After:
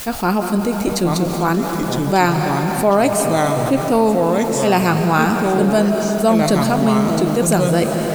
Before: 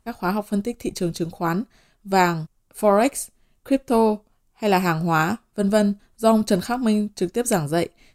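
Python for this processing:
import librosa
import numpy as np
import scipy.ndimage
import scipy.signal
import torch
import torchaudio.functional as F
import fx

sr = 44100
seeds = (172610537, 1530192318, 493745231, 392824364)

p1 = fx.quant_dither(x, sr, seeds[0], bits=6, dither='triangular')
p2 = x + F.gain(torch.from_numpy(p1), -11.0).numpy()
p3 = fx.echo_pitch(p2, sr, ms=777, semitones=-3, count=2, db_per_echo=-6.0)
p4 = fx.rev_freeverb(p3, sr, rt60_s=4.2, hf_ratio=0.85, predelay_ms=110, drr_db=7.5)
p5 = fx.env_flatten(p4, sr, amount_pct=50)
y = F.gain(torch.from_numpy(p5), -1.0).numpy()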